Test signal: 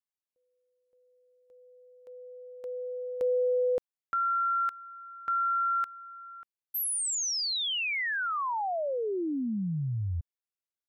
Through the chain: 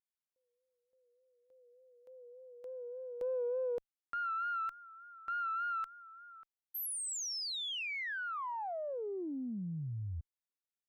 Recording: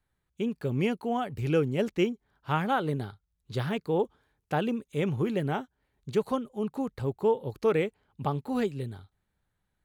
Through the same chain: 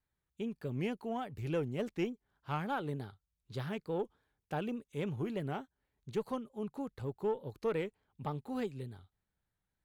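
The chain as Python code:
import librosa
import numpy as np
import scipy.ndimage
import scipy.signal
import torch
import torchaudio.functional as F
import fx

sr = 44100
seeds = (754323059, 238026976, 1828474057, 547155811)

y = fx.diode_clip(x, sr, knee_db=-14.5)
y = fx.vibrato(y, sr, rate_hz=3.4, depth_cents=64.0)
y = y * 10.0 ** (-8.0 / 20.0)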